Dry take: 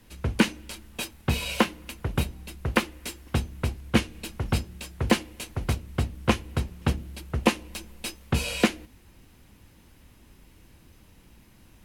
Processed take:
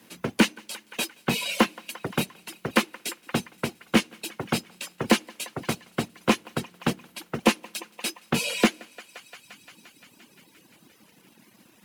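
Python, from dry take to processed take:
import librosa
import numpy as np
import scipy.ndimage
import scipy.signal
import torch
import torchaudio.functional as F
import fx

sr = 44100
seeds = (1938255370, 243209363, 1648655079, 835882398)

p1 = scipy.signal.sosfilt(scipy.signal.butter(4, 170.0, 'highpass', fs=sr, output='sos'), x)
p2 = p1 + fx.echo_thinned(p1, sr, ms=174, feedback_pct=81, hz=450.0, wet_db=-16, dry=0)
p3 = 10.0 ** (-14.0 / 20.0) * np.tanh(p2 / 10.0 ** (-14.0 / 20.0))
p4 = fx.quant_companded(p3, sr, bits=4)
p5 = p3 + F.gain(torch.from_numpy(p4), -10.5).numpy()
p6 = fx.dereverb_blind(p5, sr, rt60_s=1.3)
y = F.gain(torch.from_numpy(p6), 2.5).numpy()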